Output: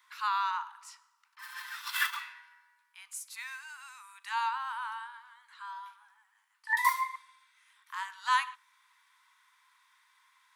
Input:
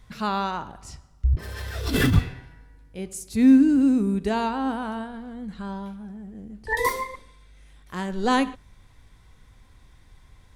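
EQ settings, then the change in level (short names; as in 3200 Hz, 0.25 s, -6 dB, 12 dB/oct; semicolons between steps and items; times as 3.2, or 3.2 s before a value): steep high-pass 910 Hz 96 dB/oct; bell 6000 Hz -6 dB 2.5 oct; 0.0 dB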